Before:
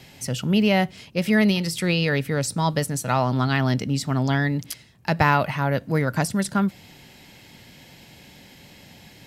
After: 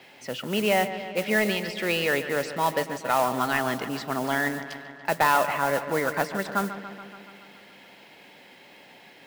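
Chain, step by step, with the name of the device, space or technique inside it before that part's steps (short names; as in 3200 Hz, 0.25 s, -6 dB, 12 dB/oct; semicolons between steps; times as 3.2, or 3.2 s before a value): carbon microphone (BPF 390–2900 Hz; soft clip -12.5 dBFS, distortion -17 dB; modulation noise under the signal 15 dB); dark delay 0.142 s, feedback 69%, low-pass 3700 Hz, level -12 dB; gain +1.5 dB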